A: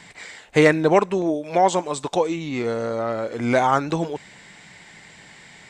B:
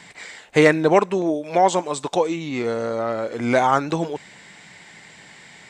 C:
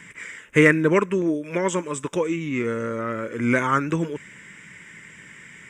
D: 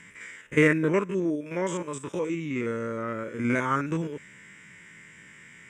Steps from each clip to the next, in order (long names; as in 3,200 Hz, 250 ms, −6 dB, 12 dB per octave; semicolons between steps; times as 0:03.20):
low-shelf EQ 64 Hz −11 dB; level +1 dB
phaser with its sweep stopped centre 1,800 Hz, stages 4; level +2.5 dB
spectrum averaged block by block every 50 ms; level −4 dB